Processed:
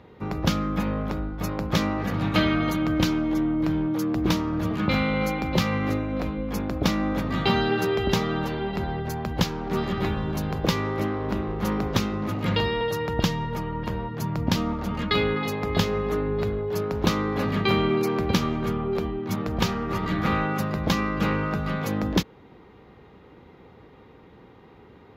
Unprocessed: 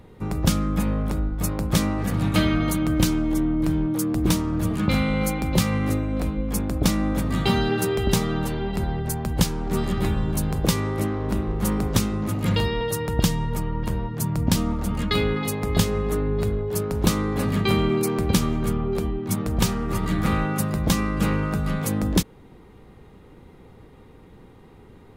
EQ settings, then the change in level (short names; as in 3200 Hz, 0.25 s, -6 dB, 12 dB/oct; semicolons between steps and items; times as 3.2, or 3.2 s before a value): running mean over 5 samples; HPF 50 Hz; low shelf 280 Hz -7.5 dB; +2.5 dB